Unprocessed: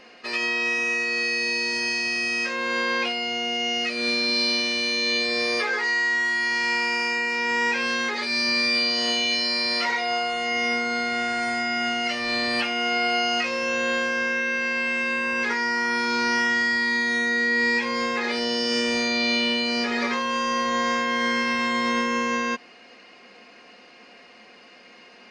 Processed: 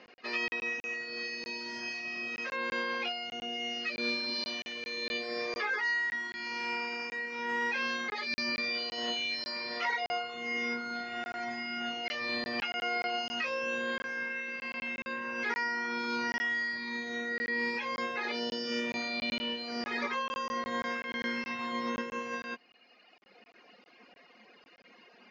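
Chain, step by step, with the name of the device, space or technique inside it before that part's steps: reverb removal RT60 1.8 s; call with lost packets (HPF 120 Hz 24 dB/oct; downsampling 16000 Hz; packet loss packets of 20 ms random); air absorption 110 m; gain -4.5 dB

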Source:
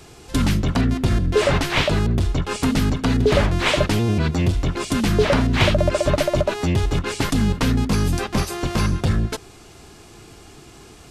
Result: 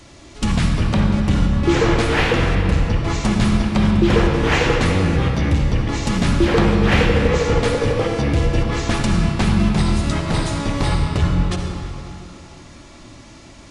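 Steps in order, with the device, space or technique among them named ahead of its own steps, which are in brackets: slowed and reverbed (varispeed -19%; reverb RT60 3.2 s, pre-delay 52 ms, DRR 1.5 dB)

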